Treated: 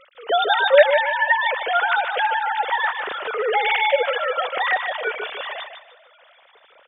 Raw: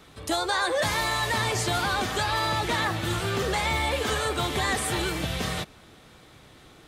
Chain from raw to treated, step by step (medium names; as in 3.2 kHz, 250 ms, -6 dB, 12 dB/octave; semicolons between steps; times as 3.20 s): formants replaced by sine waves; feedback delay 150 ms, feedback 28%, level -7.5 dB; trim +5.5 dB